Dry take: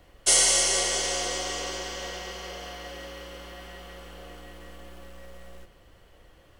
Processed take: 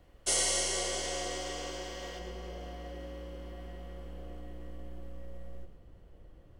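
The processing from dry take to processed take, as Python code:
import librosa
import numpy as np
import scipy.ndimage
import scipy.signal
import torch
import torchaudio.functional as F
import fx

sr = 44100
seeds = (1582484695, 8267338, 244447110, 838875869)

y = fx.tilt_shelf(x, sr, db=fx.steps((0.0, 3.5), (2.18, 9.0)), hz=660.0)
y = y + 10.0 ** (-9.5 / 20.0) * np.pad(y, (int(113 * sr / 1000.0), 0))[:len(y)]
y = F.gain(torch.from_numpy(y), -6.5).numpy()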